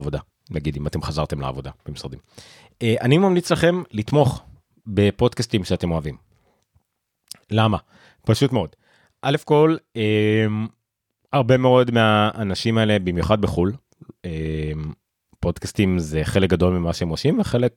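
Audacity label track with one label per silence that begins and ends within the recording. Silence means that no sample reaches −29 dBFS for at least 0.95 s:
6.140000	7.320000	silence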